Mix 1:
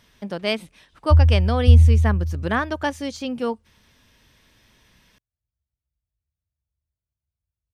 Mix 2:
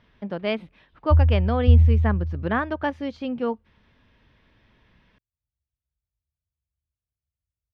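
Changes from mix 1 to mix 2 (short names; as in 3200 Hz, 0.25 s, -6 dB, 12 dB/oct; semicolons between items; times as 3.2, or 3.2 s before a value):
background -3.0 dB; master: add air absorption 350 m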